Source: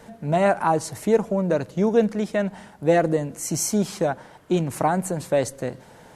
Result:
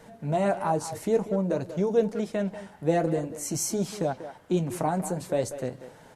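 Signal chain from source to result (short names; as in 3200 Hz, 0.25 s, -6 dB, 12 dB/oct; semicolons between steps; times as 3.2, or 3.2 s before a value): flange 0.51 Hz, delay 6.1 ms, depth 6.8 ms, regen -49%; dynamic EQ 1700 Hz, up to -6 dB, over -40 dBFS, Q 0.79; speakerphone echo 0.19 s, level -11 dB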